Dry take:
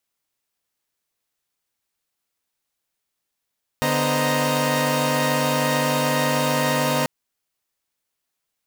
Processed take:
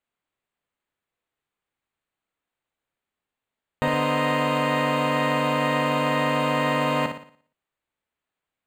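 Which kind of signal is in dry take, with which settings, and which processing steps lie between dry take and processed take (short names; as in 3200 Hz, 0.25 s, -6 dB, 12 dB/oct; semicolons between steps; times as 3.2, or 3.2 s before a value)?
chord D3/B3/C5/D#5/A#5 saw, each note -23 dBFS 3.24 s
running mean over 8 samples; flutter echo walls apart 10 m, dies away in 0.49 s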